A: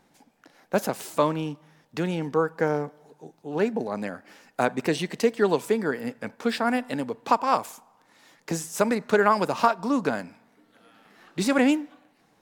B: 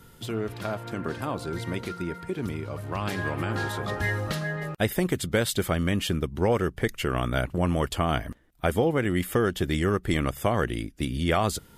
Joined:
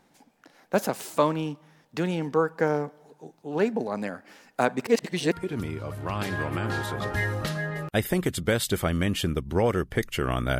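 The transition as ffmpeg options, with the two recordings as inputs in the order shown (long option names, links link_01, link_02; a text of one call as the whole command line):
ffmpeg -i cue0.wav -i cue1.wav -filter_complex "[0:a]apad=whole_dur=10.59,atrim=end=10.59,asplit=2[link_01][link_02];[link_01]atrim=end=4.872[link_03];[link_02]atrim=start=4.868:end=5.322,asetpts=PTS-STARTPTS,areverse[link_04];[1:a]atrim=start=2.178:end=7.45[link_05];[link_03][link_04]acrossfade=duration=0.004:curve1=hsin:curve2=hsin[link_06];[link_06][link_05]acrossfade=duration=0.004:curve1=hsin:curve2=hsin" out.wav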